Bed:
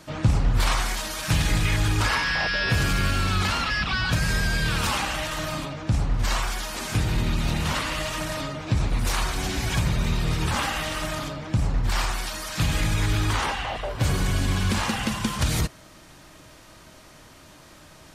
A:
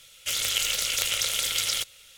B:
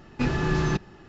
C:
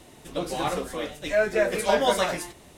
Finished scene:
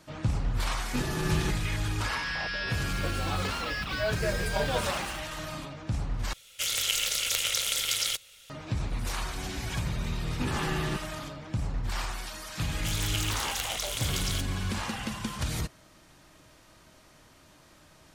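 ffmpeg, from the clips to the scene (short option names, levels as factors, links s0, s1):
-filter_complex "[2:a]asplit=2[s0][s1];[1:a]asplit=2[s2][s3];[0:a]volume=0.398[s4];[3:a]acrusher=bits=6:mix=0:aa=0.000001[s5];[s1]aresample=11025,aresample=44100[s6];[s4]asplit=2[s7][s8];[s7]atrim=end=6.334[s9];[s2]atrim=end=2.17,asetpts=PTS-STARTPTS,volume=0.794[s10];[s8]atrim=start=8.496[s11];[s0]atrim=end=1.08,asetpts=PTS-STARTPTS,volume=0.501,afade=t=in:d=0.004:c=hsin,afade=t=out:st=1.076:d=0.004:c=hsin,adelay=740[s12];[s5]atrim=end=2.77,asetpts=PTS-STARTPTS,volume=0.355,afade=t=in:d=0.004:c=hsin,afade=t=out:st=2.766:d=0.004:c=hsin,adelay=2670[s13];[s6]atrim=end=1.08,asetpts=PTS-STARTPTS,volume=0.422,afade=t=in:d=0.004:c=hsin,afade=t=out:st=1.076:d=0.004:c=hsin,adelay=10200[s14];[s3]atrim=end=2.17,asetpts=PTS-STARTPTS,volume=0.422,afade=t=in:d=0.004:c=hsin,afade=t=out:st=2.166:d=0.004:c=hsin,adelay=12580[s15];[s9][s10]acrossfade=d=0.004:c1=hsin:c2=hsin[s16];[s16][s11]acrossfade=d=0.004:c1=hsin:c2=hsin[s17];[s17][s12][s13][s14][s15]amix=inputs=5:normalize=0"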